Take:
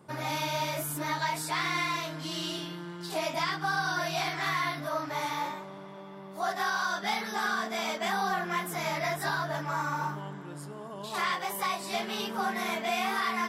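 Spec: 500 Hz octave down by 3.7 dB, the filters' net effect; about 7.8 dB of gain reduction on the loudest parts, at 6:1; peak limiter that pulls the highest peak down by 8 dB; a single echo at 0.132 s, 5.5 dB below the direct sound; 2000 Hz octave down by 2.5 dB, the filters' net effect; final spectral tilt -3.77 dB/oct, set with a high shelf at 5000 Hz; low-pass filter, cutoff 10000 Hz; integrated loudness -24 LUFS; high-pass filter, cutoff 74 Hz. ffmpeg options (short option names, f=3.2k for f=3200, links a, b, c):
-af "highpass=74,lowpass=10k,equalizer=f=500:t=o:g=-5.5,equalizer=f=2k:t=o:g=-4,highshelf=f=5k:g=8,acompressor=threshold=-36dB:ratio=6,alimiter=level_in=8dB:limit=-24dB:level=0:latency=1,volume=-8dB,aecho=1:1:132:0.531,volume=16dB"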